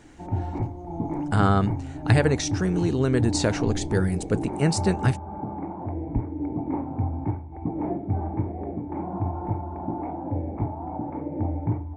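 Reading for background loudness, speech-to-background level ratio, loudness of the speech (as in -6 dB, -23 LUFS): -30.0 LUFS, 5.5 dB, -24.5 LUFS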